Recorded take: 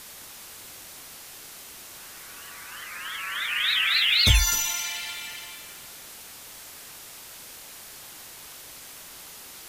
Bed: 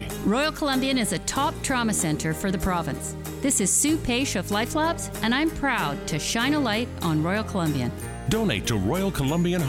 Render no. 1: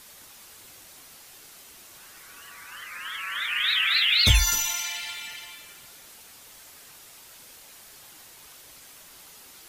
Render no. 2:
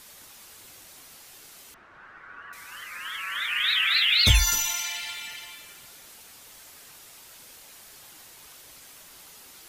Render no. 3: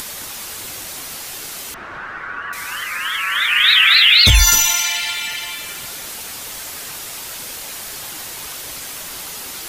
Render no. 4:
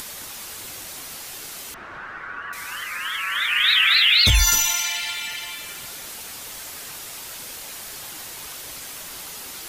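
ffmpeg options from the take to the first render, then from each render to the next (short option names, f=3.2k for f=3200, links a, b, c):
-af "afftdn=nr=6:nf=-44"
-filter_complex "[0:a]asettb=1/sr,asplit=3[a][b][c];[a]atrim=end=1.744[d];[b]atrim=start=1.74:end=2.53,asetpts=PTS-STARTPTS,afade=t=in:d=0.004:c=qsin,afade=t=out:st=0.786:d=0.004:c=qsin,lowpass=f=1.5k:t=q:w=2.5[e];[c]atrim=start=2.526[f];[d][e]acrossfade=d=0.004:c1=hsin:c2=qsin[g];[g][f]acrossfade=d=0.004:c1=qsin:c2=hsin"
-filter_complex "[0:a]asplit=2[a][b];[b]acompressor=mode=upward:threshold=-29dB:ratio=2.5,volume=1dB[c];[a][c]amix=inputs=2:normalize=0,alimiter=level_in=5.5dB:limit=-1dB:release=50:level=0:latency=1"
-af "volume=-5.5dB"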